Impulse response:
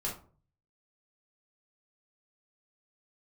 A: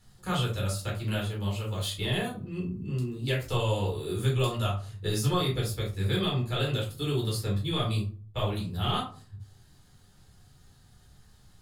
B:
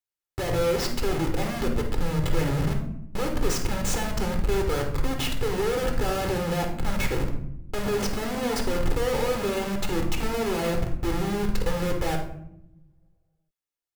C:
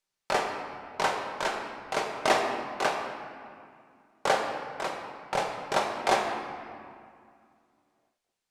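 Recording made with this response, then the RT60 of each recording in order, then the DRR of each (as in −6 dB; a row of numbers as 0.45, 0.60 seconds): A; 0.45, 0.80, 2.2 seconds; −4.5, 2.5, 0.5 decibels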